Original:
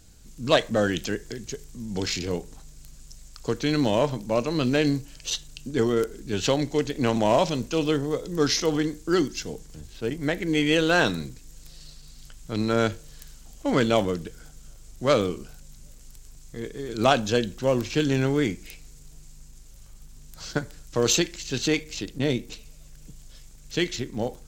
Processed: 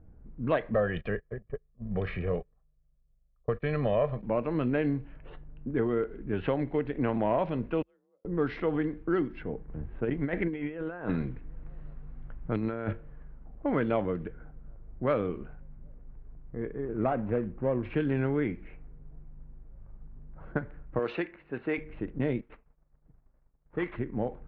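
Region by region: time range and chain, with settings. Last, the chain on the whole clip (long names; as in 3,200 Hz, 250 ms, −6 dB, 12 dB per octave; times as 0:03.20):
0:00.74–0:04.23: noise gate −35 dBFS, range −27 dB + comb filter 1.7 ms, depth 72%
0:07.82–0:08.25: high-pass filter 350 Hz 6 dB per octave + gate with flip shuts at −27 dBFS, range −41 dB + frequency shifter +37 Hz
0:09.68–0:12.93: high-shelf EQ 5,100 Hz +7 dB + compressor whose output falls as the input rises −27 dBFS, ratio −0.5
0:16.85–0:17.83: running median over 25 samples + high-frequency loss of the air 210 metres
0:20.99–0:21.78: high-pass filter 490 Hz 6 dB per octave + notch filter 3,200 Hz
0:22.41–0:23.96: variable-slope delta modulation 32 kbit/s + downward expander −36 dBFS + low-shelf EQ 360 Hz −5.5 dB
whole clip: inverse Chebyshev low-pass filter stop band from 6,900 Hz, stop band 60 dB; low-pass that shuts in the quiet parts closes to 760 Hz, open at −19 dBFS; downward compressor 2 to 1, threshold −28 dBFS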